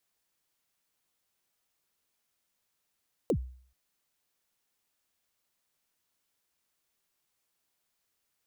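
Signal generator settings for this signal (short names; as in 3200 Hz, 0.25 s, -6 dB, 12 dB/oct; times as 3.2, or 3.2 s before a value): kick drum length 0.43 s, from 570 Hz, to 63 Hz, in 77 ms, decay 0.52 s, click on, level -21 dB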